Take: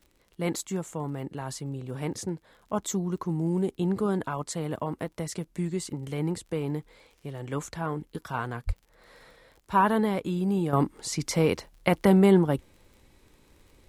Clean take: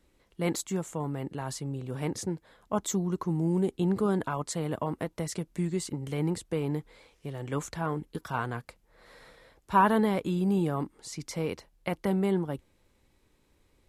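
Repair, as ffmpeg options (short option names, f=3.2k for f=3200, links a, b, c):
-filter_complex "[0:a]adeclick=t=4,asplit=3[a][b][c];[a]afade=t=out:st=8.66:d=0.02[d];[b]highpass=f=140:w=0.5412,highpass=f=140:w=1.3066,afade=t=in:st=8.66:d=0.02,afade=t=out:st=8.78:d=0.02[e];[c]afade=t=in:st=8.78:d=0.02[f];[d][e][f]amix=inputs=3:normalize=0,asetnsamples=n=441:p=0,asendcmd='10.73 volume volume -8.5dB',volume=0dB"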